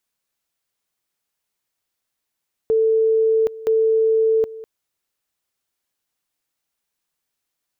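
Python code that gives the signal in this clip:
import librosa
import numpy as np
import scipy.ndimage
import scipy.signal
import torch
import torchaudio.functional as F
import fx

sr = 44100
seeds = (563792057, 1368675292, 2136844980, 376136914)

y = fx.two_level_tone(sr, hz=444.0, level_db=-13.5, drop_db=18.0, high_s=0.77, low_s=0.2, rounds=2)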